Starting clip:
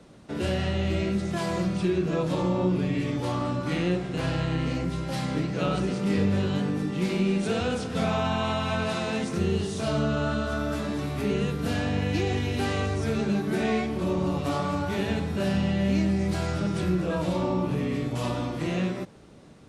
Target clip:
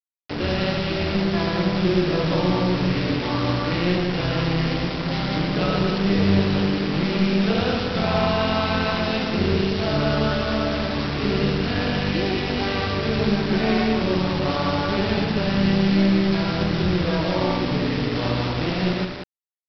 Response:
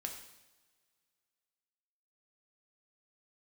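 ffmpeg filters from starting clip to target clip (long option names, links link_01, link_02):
-af "tremolo=f=190:d=0.621,acontrast=44,aresample=11025,acrusher=bits=4:mix=0:aa=0.000001,aresample=44100,aecho=1:1:116.6|189.5:0.447|0.562"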